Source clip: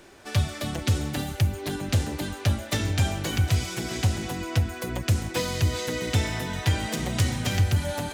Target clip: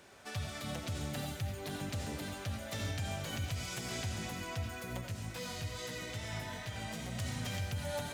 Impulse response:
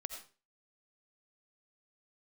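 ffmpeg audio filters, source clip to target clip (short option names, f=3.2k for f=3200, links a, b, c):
-filter_complex "[0:a]highpass=72,equalizer=f=330:t=o:w=0.39:g=-9,alimiter=limit=-23dB:level=0:latency=1:release=149,asettb=1/sr,asplit=3[a][b][c];[a]atrim=end=5.014[d];[b]atrim=start=5.01:end=7.19,asetpts=PTS-STARTPTS,afade=t=in:d=0.004:c=qsin,afade=t=out:st=2.176:d=0.004:c=qsin,flanger=delay=16.5:depth=2.9:speed=2.4[e];[c]atrim=start=7.186[f];[d][e]acrossfade=d=0.004:c1=hsin:c2=qsin[g];[g][f]acrossfade=d=0.004:c1=qsin:c2=hsin[h];[1:a]atrim=start_sample=2205[i];[h][i]afir=irnorm=-1:irlink=0,volume=-3dB"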